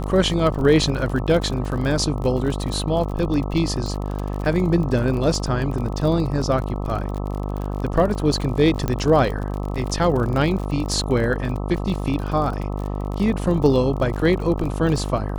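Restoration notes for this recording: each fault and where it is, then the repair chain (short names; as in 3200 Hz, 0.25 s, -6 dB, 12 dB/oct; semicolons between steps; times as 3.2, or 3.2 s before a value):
buzz 50 Hz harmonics 26 -26 dBFS
crackle 43/s -27 dBFS
8.88 pop -10 dBFS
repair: de-click; de-hum 50 Hz, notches 26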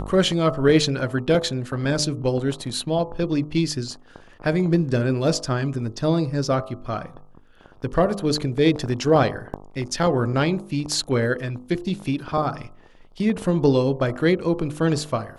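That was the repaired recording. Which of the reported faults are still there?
8.88 pop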